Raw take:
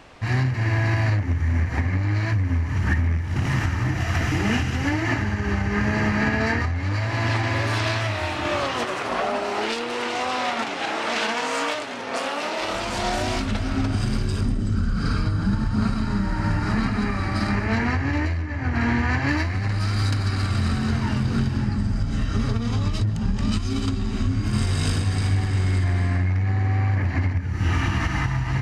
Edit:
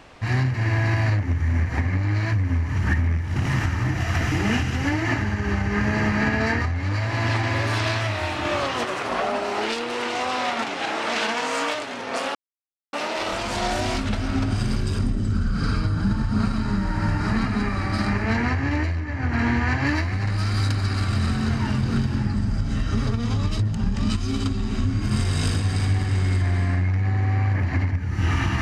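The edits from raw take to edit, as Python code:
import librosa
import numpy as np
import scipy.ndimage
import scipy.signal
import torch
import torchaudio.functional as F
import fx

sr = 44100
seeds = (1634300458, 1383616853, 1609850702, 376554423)

y = fx.edit(x, sr, fx.insert_silence(at_s=12.35, length_s=0.58), tone=tone)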